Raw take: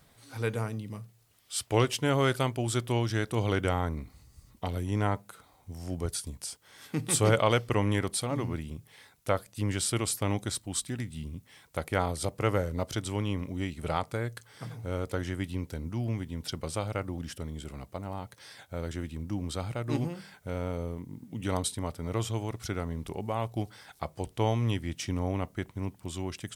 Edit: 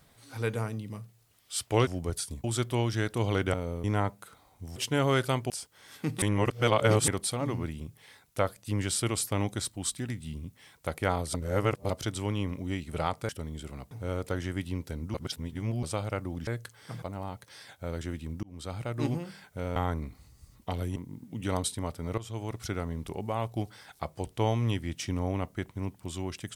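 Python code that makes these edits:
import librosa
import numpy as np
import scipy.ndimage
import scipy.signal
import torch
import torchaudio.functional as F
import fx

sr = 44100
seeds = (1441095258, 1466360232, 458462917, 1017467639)

y = fx.edit(x, sr, fx.swap(start_s=1.87, length_s=0.74, other_s=5.83, other_length_s=0.57),
    fx.swap(start_s=3.71, length_s=1.2, other_s=20.66, other_length_s=0.3),
    fx.reverse_span(start_s=7.12, length_s=0.86),
    fx.reverse_span(start_s=12.24, length_s=0.56),
    fx.swap(start_s=14.19, length_s=0.55, other_s=17.3, other_length_s=0.62),
    fx.reverse_span(start_s=15.97, length_s=0.69),
    fx.fade_in_span(start_s=19.33, length_s=0.56, curve='qsin'),
    fx.fade_in_from(start_s=22.18, length_s=0.35, floor_db=-14.5), tone=tone)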